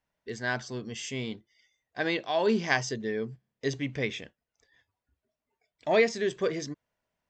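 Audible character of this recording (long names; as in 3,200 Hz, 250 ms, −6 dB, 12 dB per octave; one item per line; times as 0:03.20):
background noise floor −88 dBFS
spectral slope −4.5 dB per octave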